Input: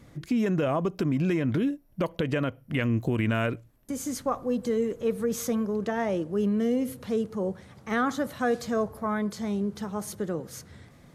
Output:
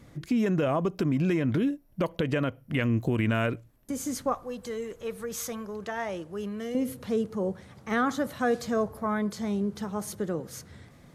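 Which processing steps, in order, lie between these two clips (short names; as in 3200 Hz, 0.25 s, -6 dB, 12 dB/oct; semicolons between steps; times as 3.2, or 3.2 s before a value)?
4.34–6.75 graphic EQ 125/250/500 Hz -6/-10/-5 dB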